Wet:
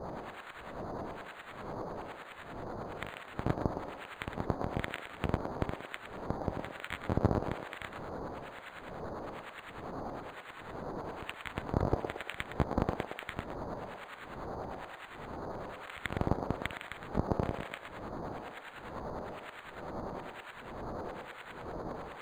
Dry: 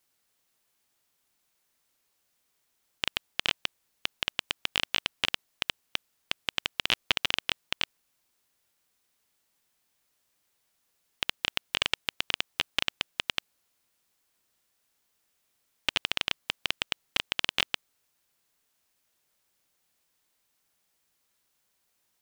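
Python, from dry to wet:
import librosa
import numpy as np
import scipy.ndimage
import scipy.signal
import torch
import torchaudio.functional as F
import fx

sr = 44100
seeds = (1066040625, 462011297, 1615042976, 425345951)

p1 = fx.pitch_ramps(x, sr, semitones=-6.0, every_ms=303)
p2 = scipy.signal.sosfilt(scipy.signal.butter(2, 83.0, 'highpass', fs=sr, output='sos'), p1)
p3 = fx.riaa(p2, sr, side='playback')
p4 = fx.quant_dither(p3, sr, seeds[0], bits=6, dither='triangular')
p5 = fx.harmonic_tremolo(p4, sr, hz=1.1, depth_pct=100, crossover_hz=1300.0)
p6 = np.clip(p5, -10.0 ** (-20.0 / 20.0), 10.0 ** (-20.0 / 20.0))
p7 = fx.filter_lfo_lowpass(p6, sr, shape='saw_up', hz=9.9, low_hz=630.0, high_hz=1900.0, q=0.74)
p8 = p7 + fx.echo_banded(p7, sr, ms=113, feedback_pct=54, hz=670.0, wet_db=-4.0, dry=0)
p9 = np.interp(np.arange(len(p8)), np.arange(len(p8))[::8], p8[::8])
y = p9 * 10.0 ** (9.5 / 20.0)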